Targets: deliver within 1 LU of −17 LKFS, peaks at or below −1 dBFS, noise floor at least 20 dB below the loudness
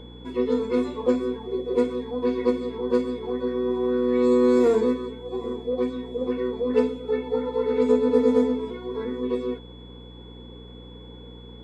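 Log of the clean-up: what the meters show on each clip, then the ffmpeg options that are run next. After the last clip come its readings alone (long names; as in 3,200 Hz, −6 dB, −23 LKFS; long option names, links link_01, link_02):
mains hum 60 Hz; hum harmonics up to 300 Hz; level of the hum −42 dBFS; interfering tone 3,400 Hz; level of the tone −50 dBFS; integrated loudness −24.5 LKFS; sample peak −7.5 dBFS; target loudness −17.0 LKFS
→ -af "bandreject=frequency=60:width_type=h:width=4,bandreject=frequency=120:width_type=h:width=4,bandreject=frequency=180:width_type=h:width=4,bandreject=frequency=240:width_type=h:width=4,bandreject=frequency=300:width_type=h:width=4"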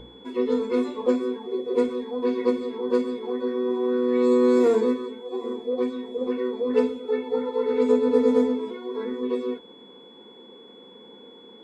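mains hum none found; interfering tone 3,400 Hz; level of the tone −50 dBFS
→ -af "bandreject=frequency=3400:width=30"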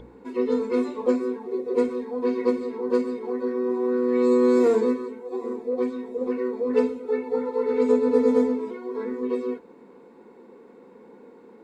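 interfering tone none found; integrated loudness −24.5 LKFS; sample peak −7.5 dBFS; target loudness −17.0 LKFS
→ -af "volume=7.5dB,alimiter=limit=-1dB:level=0:latency=1"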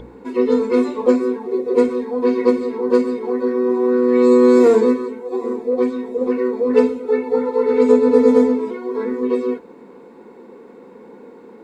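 integrated loudness −17.0 LKFS; sample peak −1.0 dBFS; background noise floor −42 dBFS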